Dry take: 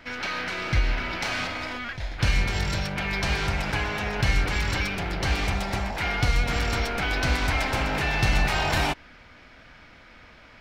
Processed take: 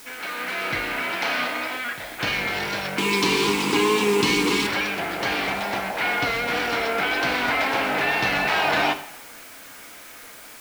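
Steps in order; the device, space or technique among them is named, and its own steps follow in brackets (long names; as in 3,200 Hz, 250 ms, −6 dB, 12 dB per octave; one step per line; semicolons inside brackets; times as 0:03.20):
dictaphone (band-pass filter 290–3,900 Hz; automatic gain control gain up to 6.5 dB; tape wow and flutter; white noise bed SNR 19 dB)
0:02.98–0:04.67: drawn EQ curve 120 Hz 0 dB, 190 Hz +10 dB, 420 Hz +12 dB, 630 Hz −17 dB, 1,000 Hz +8 dB, 1,500 Hz −9 dB, 2,600 Hz +4 dB, 5,300 Hz +9 dB, 7,600 Hz +14 dB, 13,000 Hz +4 dB
coupled-rooms reverb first 0.6 s, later 1.8 s, DRR 8 dB
level −2 dB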